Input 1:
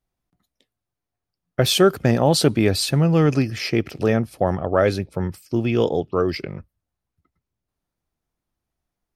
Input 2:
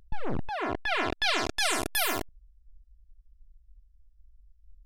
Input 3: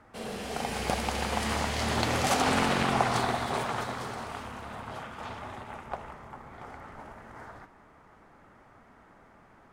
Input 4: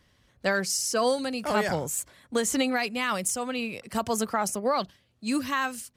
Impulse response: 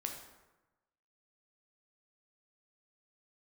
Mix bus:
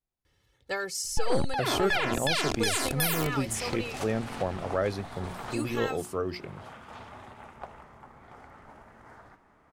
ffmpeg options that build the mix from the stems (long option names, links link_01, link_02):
-filter_complex "[0:a]bandreject=frequency=60:width_type=h:width=6,bandreject=frequency=120:width_type=h:width=6,bandreject=frequency=180:width_type=h:width=6,bandreject=frequency=240:width_type=h:width=6,bandreject=frequency=300:width_type=h:width=6,bandreject=frequency=360:width_type=h:width=6,volume=-16dB,asplit=2[link_01][link_02];[1:a]highshelf=frequency=7400:gain=6,adelay=1050,volume=-3dB[link_03];[2:a]adelay=1700,volume=-11.5dB[link_04];[3:a]aecho=1:1:2.3:0.89,adelay=250,volume=-14dB,asplit=3[link_05][link_06][link_07];[link_05]atrim=end=3.98,asetpts=PTS-STARTPTS,afade=type=out:start_time=3.976:duration=0.004:curve=hsin[link_08];[link_06]atrim=start=3.98:end=5.4,asetpts=PTS-STARTPTS,volume=0[link_09];[link_07]atrim=start=5.4,asetpts=PTS-STARTPTS,afade=type=in:duration=0.004:curve=hsin[link_10];[link_08][link_09][link_10]concat=n=3:v=0:a=1[link_11];[link_02]apad=whole_len=503675[link_12];[link_04][link_12]sidechaincompress=threshold=-41dB:ratio=8:attack=12:release=457[link_13];[link_01][link_03][link_13][link_11]amix=inputs=4:normalize=0,acontrast=51,alimiter=limit=-15dB:level=0:latency=1:release=163"